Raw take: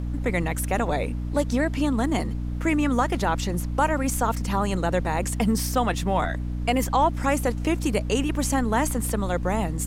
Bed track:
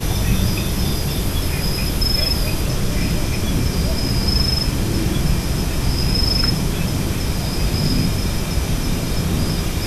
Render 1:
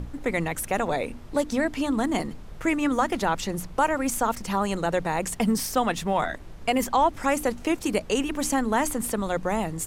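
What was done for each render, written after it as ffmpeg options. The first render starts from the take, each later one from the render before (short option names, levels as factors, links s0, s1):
-af "bandreject=f=60:t=h:w=6,bandreject=f=120:t=h:w=6,bandreject=f=180:t=h:w=6,bandreject=f=240:t=h:w=6,bandreject=f=300:t=h:w=6"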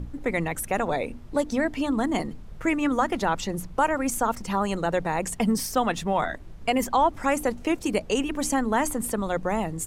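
-af "afftdn=nr=6:nf=-41"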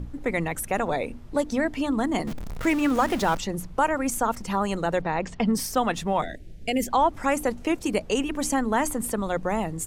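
-filter_complex "[0:a]asettb=1/sr,asplit=3[s0][s1][s2];[s0]atrim=end=2.274[s3];[s1]atrim=start=2.27:end=3.38,asetpts=PTS-STARTPTS,afade=t=in:d=0.004:c=qsin,afade=t=out:st=1.106:d=0.004:c=qsin,aeval=exprs='val(0)+0.5*0.0316*sgn(val(0))':c=same[s4];[s2]atrim=start=3.376[s5];[s3][s4]acrossfade=d=0.004:c1=hsin:c2=qsin[s6];[s6][s5]acrossfade=d=0.004:c1=qsin:c2=hsin,asplit=3[s7][s8][s9];[s7]afade=t=out:st=5.01:d=0.02[s10];[s8]lowpass=f=5100:w=0.5412,lowpass=f=5100:w=1.3066,afade=t=in:st=5.01:d=0.02,afade=t=out:st=5.52:d=0.02[s11];[s9]afade=t=in:st=5.52:d=0.02[s12];[s10][s11][s12]amix=inputs=3:normalize=0,asettb=1/sr,asplit=3[s13][s14][s15];[s13]atrim=end=6.224[s16];[s14]atrim=start=6.22:end=6.89,asetpts=PTS-STARTPTS,afade=t=in:d=0.004:c=qsin,afade=t=out:st=0.666:d=0.004:c=qsin,asuperstop=centerf=1100:order=4:qfactor=0.81[s17];[s15]atrim=start=6.886[s18];[s16][s17]acrossfade=d=0.004:c1=hsin:c2=qsin[s19];[s19][s18]acrossfade=d=0.004:c1=qsin:c2=hsin"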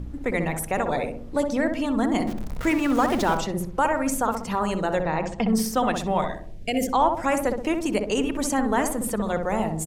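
-filter_complex "[0:a]asplit=2[s0][s1];[s1]adelay=63,lowpass=f=920:p=1,volume=0.668,asplit=2[s2][s3];[s3]adelay=63,lowpass=f=920:p=1,volume=0.53,asplit=2[s4][s5];[s5]adelay=63,lowpass=f=920:p=1,volume=0.53,asplit=2[s6][s7];[s7]adelay=63,lowpass=f=920:p=1,volume=0.53,asplit=2[s8][s9];[s9]adelay=63,lowpass=f=920:p=1,volume=0.53,asplit=2[s10][s11];[s11]adelay=63,lowpass=f=920:p=1,volume=0.53,asplit=2[s12][s13];[s13]adelay=63,lowpass=f=920:p=1,volume=0.53[s14];[s0][s2][s4][s6][s8][s10][s12][s14]amix=inputs=8:normalize=0"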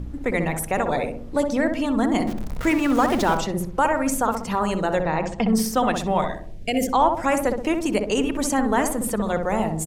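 -af "volume=1.26"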